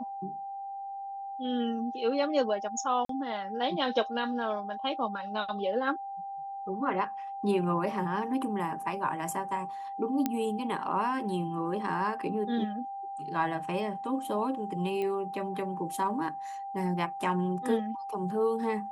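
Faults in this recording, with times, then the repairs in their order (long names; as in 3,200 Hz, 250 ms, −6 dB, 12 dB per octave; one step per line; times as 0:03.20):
whistle 790 Hz −36 dBFS
0:03.05–0:03.09: drop-out 43 ms
0:10.26: click −14 dBFS
0:15.02: click −23 dBFS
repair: click removal
notch filter 790 Hz, Q 30
repair the gap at 0:03.05, 43 ms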